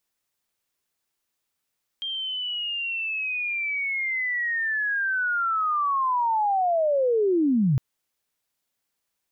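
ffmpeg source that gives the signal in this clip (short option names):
-f lavfi -i "aevalsrc='pow(10,(-27.5+10*t/5.76)/20)*sin(2*PI*(3200*t-3080*t*t/(2*5.76)))':d=5.76:s=44100"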